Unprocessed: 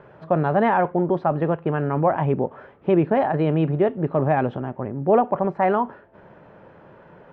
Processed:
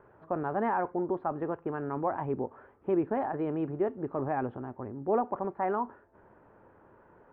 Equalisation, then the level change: low-pass 1.3 kHz 12 dB/octave; peaking EQ 160 Hz -13 dB 0.73 oct; peaking EQ 590 Hz -7.5 dB 0.76 oct; -5.5 dB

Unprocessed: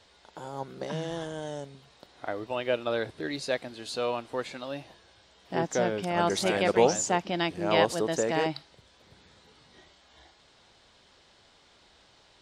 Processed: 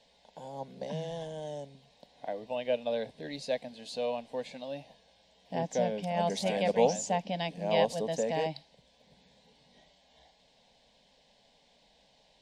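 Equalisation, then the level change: treble shelf 5.8 kHz -9.5 dB; static phaser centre 350 Hz, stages 6; -1.0 dB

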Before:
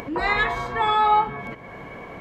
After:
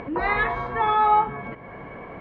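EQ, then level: low-pass 2.2 kHz 12 dB/octave; 0.0 dB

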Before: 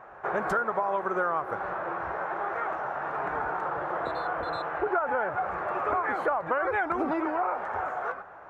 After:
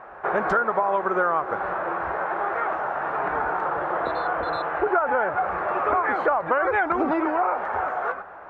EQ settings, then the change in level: low-pass 4.5 kHz 12 dB/octave; peaking EQ 120 Hz -6 dB 0.6 oct; +5.5 dB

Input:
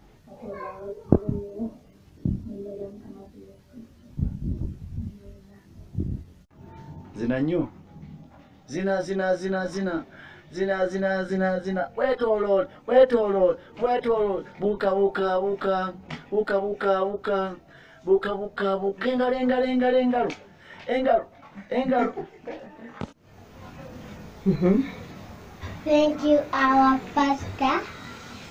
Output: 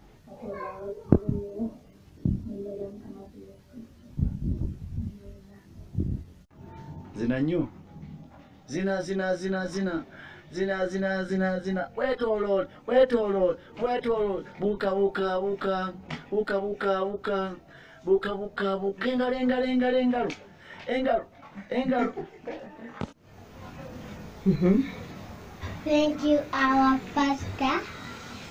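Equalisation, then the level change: dynamic bell 730 Hz, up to -5 dB, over -33 dBFS, Q 0.71; 0.0 dB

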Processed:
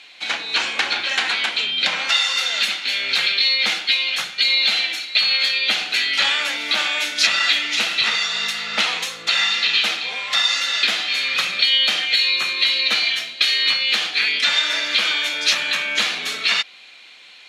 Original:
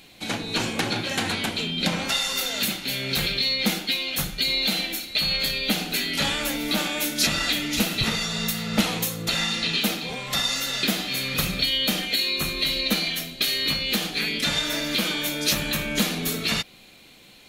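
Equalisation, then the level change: band-pass filter 1.8 kHz, Q 0.67; distance through air 72 m; tilt EQ +3 dB/octave; +6.5 dB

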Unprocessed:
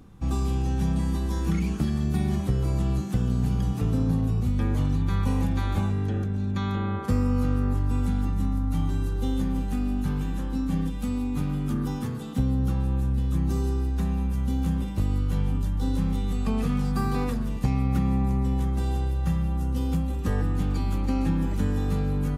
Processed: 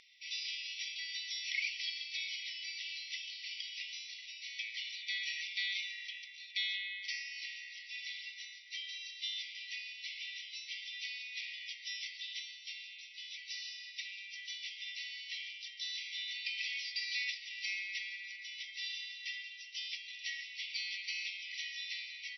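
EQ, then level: brick-wall FIR band-pass 1.9–5.9 kHz; +9.0 dB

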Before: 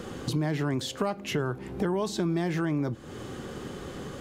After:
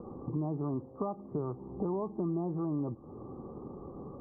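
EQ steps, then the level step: rippled Chebyshev low-pass 1.2 kHz, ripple 3 dB; -4.5 dB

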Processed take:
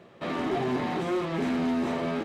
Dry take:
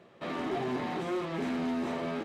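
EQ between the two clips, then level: bass shelf 170 Hz +3.5 dB; +4.0 dB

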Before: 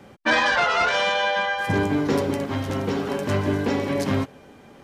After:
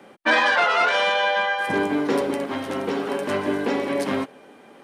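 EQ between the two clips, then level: three-band isolator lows -22 dB, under 210 Hz, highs -12 dB, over 4.3 kHz; peaking EQ 9.2 kHz +10.5 dB 0.43 oct; treble shelf 12 kHz +11 dB; +1.5 dB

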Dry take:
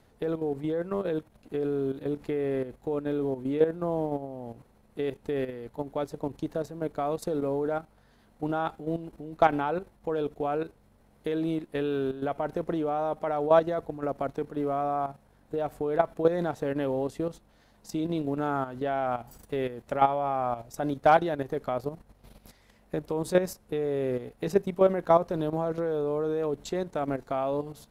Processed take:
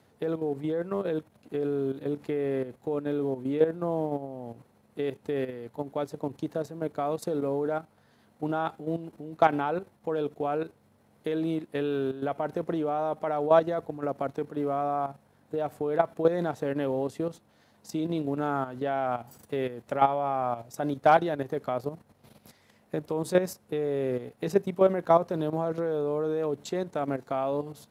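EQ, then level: high-pass 88 Hz 24 dB/octave; 0.0 dB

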